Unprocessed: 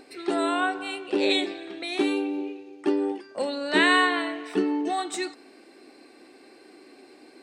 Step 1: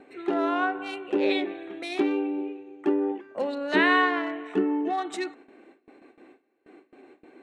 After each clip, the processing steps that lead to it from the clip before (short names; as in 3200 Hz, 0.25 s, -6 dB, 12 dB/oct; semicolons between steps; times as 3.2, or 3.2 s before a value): Wiener smoothing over 9 samples; gate with hold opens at -42 dBFS; treble ducked by the level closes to 2500 Hz, closed at -20.5 dBFS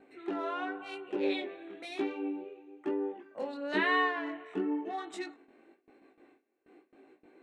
chorus 1 Hz, delay 18 ms, depth 4.2 ms; gain -5 dB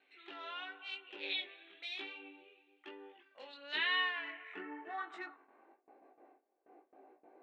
band-pass sweep 3300 Hz -> 730 Hz, 3.93–5.99; air absorption 54 m; gain +6.5 dB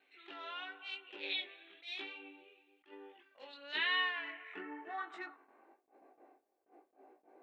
attack slew limiter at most 240 dB/s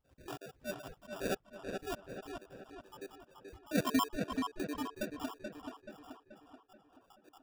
random spectral dropouts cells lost 81%; sample-rate reducer 2100 Hz, jitter 0%; darkening echo 0.431 s, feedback 51%, low-pass 3800 Hz, level -5 dB; gain +9.5 dB